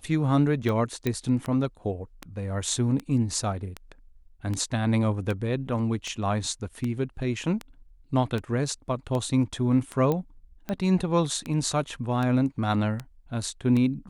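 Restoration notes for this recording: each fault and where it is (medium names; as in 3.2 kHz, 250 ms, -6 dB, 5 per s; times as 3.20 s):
tick 78 rpm -18 dBFS
1.07 s: pop -13 dBFS
10.12 s: pop -15 dBFS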